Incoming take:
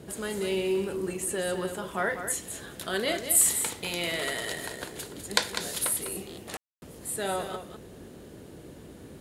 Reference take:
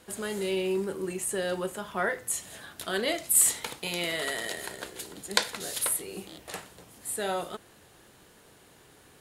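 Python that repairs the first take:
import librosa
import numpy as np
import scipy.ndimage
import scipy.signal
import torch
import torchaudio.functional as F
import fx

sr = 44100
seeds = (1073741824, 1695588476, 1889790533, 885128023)

y = fx.fix_ambience(x, sr, seeds[0], print_start_s=8.6, print_end_s=9.1, start_s=6.57, end_s=6.82)
y = fx.noise_reduce(y, sr, print_start_s=8.6, print_end_s=9.1, reduce_db=10.0)
y = fx.fix_echo_inverse(y, sr, delay_ms=200, level_db=-9.0)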